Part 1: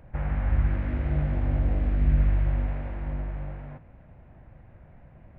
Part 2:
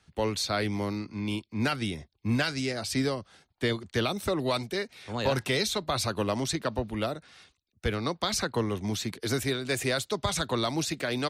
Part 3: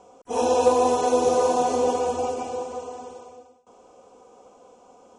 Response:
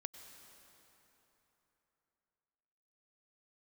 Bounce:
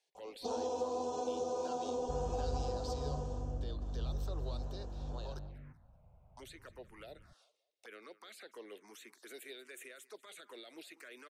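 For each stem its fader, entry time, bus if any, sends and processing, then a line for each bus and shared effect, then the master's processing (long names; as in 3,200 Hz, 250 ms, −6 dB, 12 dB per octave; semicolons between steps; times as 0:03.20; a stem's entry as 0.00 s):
−14.0 dB, 1.95 s, no send, no echo send, speech leveller within 3 dB
−12.0 dB, 0.00 s, muted 0:05.39–0:06.37, no send, echo send −18.5 dB, high-pass filter 390 Hz 24 dB per octave; brickwall limiter −25.5 dBFS, peak gain reduction 10.5 dB
−4.5 dB, 0.15 s, no send, no echo send, downward compressor 4 to 1, threshold −31 dBFS, peak gain reduction 15 dB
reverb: not used
echo: repeating echo 191 ms, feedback 30%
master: phaser swept by the level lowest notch 220 Hz, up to 2,100 Hz, full sweep at −40.5 dBFS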